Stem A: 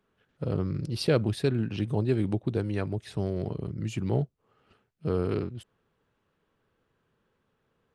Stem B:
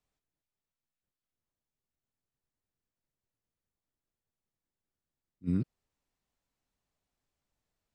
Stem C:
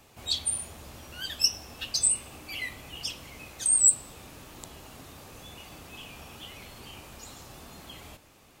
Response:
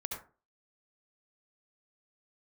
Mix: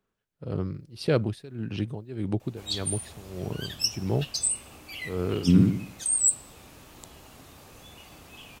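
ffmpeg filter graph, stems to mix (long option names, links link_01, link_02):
-filter_complex "[0:a]tremolo=f=1.7:d=0.9,volume=-6dB[link_01];[1:a]dynaudnorm=framelen=360:gausssize=3:maxgain=8dB,volume=-4.5dB,asplit=2[link_02][link_03];[link_03]volume=-3dB[link_04];[2:a]adelay=2400,volume=-9.5dB[link_05];[link_04]aecho=0:1:73|146|219|292|365|438:1|0.41|0.168|0.0689|0.0283|0.0116[link_06];[link_01][link_02][link_05][link_06]amix=inputs=4:normalize=0,dynaudnorm=framelen=140:gausssize=7:maxgain=7dB"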